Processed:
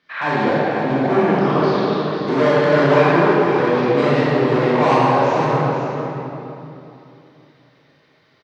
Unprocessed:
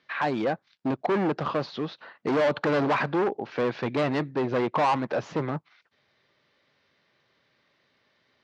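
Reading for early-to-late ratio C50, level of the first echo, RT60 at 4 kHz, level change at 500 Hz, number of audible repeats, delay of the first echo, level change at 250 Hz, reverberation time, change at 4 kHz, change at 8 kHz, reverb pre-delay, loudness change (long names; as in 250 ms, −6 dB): −6.0 dB, −8.5 dB, 2.1 s, +11.5 dB, 1, 497 ms, +10.5 dB, 3.0 s, +9.0 dB, can't be measured, 22 ms, +10.5 dB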